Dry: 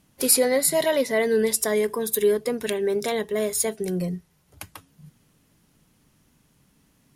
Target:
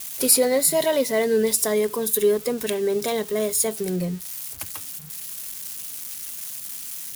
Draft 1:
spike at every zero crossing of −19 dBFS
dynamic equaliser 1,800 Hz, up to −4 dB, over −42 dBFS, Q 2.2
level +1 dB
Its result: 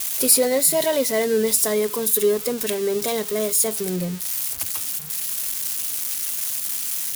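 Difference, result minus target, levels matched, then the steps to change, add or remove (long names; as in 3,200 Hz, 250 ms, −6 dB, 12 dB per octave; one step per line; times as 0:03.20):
spike at every zero crossing: distortion +8 dB
change: spike at every zero crossing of −27 dBFS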